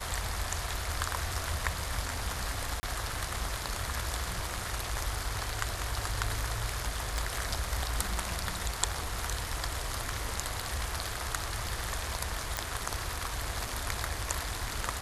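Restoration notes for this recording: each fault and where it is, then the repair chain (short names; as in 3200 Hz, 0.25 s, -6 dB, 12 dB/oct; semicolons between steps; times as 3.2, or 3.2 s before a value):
2.8–2.83 gap 30 ms
7.18 pop
12.57 pop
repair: de-click; interpolate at 2.8, 30 ms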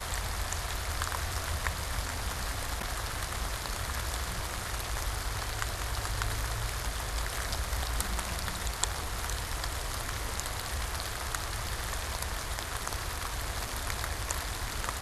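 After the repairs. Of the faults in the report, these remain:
7.18 pop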